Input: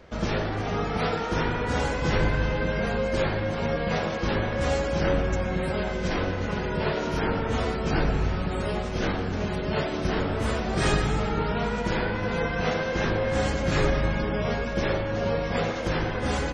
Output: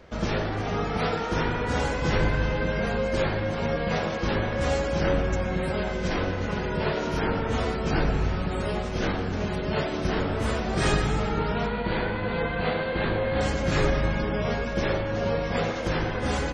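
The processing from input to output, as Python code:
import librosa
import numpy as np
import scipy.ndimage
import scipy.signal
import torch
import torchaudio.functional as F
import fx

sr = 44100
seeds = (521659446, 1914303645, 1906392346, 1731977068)

y = fx.cheby1_lowpass(x, sr, hz=4600.0, order=10, at=(11.66, 13.41))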